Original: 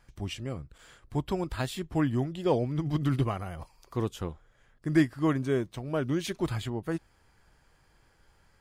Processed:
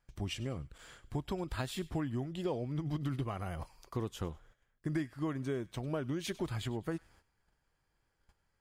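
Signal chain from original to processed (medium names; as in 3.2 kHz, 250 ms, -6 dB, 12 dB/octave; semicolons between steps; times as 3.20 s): gate -58 dBFS, range -15 dB; compression 5:1, threshold -33 dBFS, peak gain reduction 14 dB; on a send: feedback echo behind a high-pass 99 ms, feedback 31%, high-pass 1.8 kHz, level -18 dB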